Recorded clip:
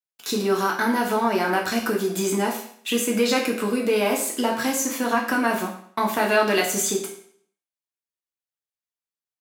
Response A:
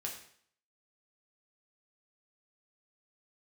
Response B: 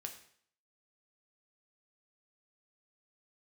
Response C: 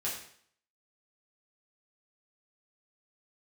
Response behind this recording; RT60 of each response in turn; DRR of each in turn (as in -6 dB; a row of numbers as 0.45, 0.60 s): A; 0.60, 0.60, 0.60 s; -1.5, 3.5, -7.0 dB